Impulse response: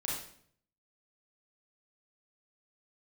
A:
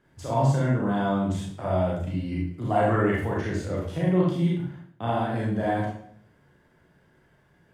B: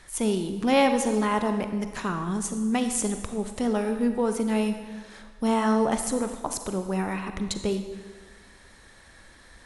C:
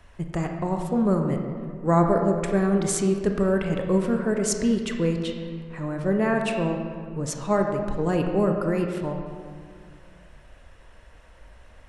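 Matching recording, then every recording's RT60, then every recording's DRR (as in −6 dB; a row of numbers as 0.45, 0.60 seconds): A; 0.60, 1.5, 2.1 seconds; −5.0, 7.0, 3.0 decibels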